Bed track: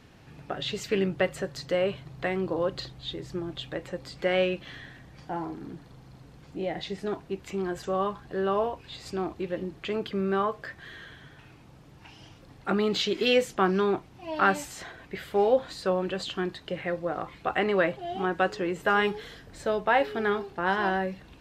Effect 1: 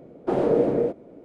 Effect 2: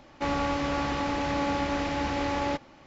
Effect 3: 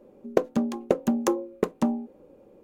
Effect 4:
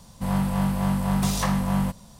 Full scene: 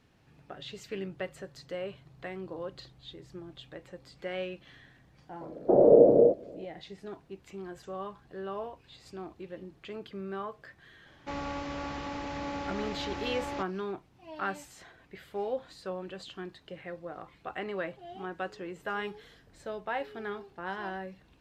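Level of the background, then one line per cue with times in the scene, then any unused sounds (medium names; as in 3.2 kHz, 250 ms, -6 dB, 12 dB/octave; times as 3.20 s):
bed track -11 dB
5.41 s: add 1 -3.5 dB + resonant low-pass 600 Hz, resonance Q 3.1
11.06 s: add 2 -8.5 dB
not used: 3, 4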